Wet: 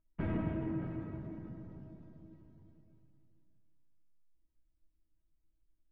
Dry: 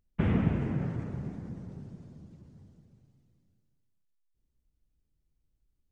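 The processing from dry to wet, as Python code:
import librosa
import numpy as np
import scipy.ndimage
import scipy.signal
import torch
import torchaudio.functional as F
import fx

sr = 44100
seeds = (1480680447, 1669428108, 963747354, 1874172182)

p1 = scipy.signal.sosfilt(scipy.signal.bessel(2, 1900.0, 'lowpass', norm='mag', fs=sr, output='sos'), x)
p2 = 10.0 ** (-32.0 / 20.0) * np.tanh(p1 / 10.0 ** (-32.0 / 20.0))
p3 = p1 + (p2 * 10.0 ** (-4.0 / 20.0))
p4 = fx.comb_fb(p3, sr, f0_hz=320.0, decay_s=0.18, harmonics='all', damping=0.0, mix_pct=90)
p5 = p4 + 10.0 ** (-17.0 / 20.0) * np.pad(p4, (int(627 * sr / 1000.0), 0))[:len(p4)]
y = p5 * 10.0 ** (4.5 / 20.0)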